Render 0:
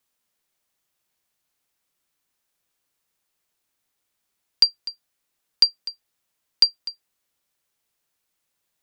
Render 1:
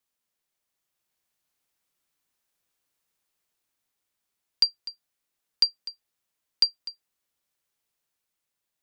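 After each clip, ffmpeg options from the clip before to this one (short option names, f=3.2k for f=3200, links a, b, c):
-af "dynaudnorm=f=190:g=11:m=4dB,volume=-6.5dB"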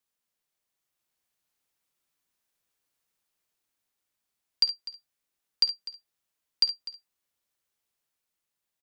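-af "aecho=1:1:53|68:0.158|0.237,volume=-2dB"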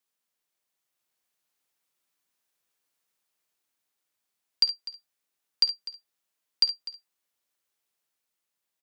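-af "lowshelf=f=130:g=-10.5,volume=1dB"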